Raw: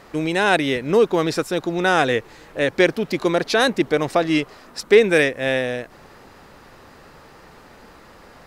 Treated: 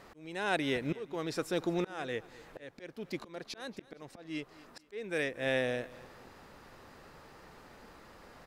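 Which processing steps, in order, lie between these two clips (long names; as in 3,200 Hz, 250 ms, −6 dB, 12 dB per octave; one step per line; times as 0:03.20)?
volume swells 730 ms
repeating echo 232 ms, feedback 34%, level −20 dB
level −8.5 dB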